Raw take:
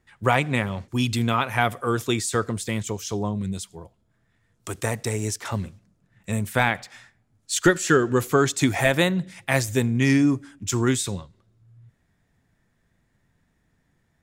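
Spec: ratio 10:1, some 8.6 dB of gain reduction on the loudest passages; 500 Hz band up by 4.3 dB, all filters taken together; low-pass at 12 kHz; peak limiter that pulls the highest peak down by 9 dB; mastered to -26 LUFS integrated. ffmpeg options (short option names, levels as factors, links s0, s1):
-af "lowpass=12000,equalizer=f=500:t=o:g=5.5,acompressor=threshold=0.126:ratio=10,volume=1.19,alimiter=limit=0.224:level=0:latency=1"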